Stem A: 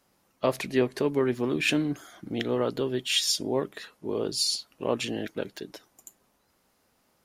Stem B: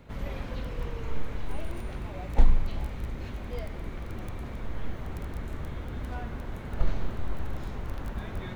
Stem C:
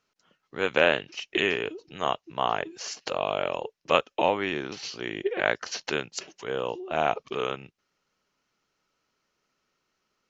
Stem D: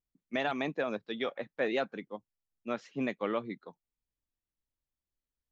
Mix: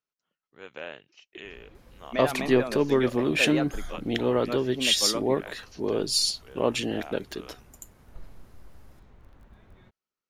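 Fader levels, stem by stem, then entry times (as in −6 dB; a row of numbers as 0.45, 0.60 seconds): +2.5, −18.5, −18.0, +0.5 decibels; 1.75, 1.35, 0.00, 1.80 seconds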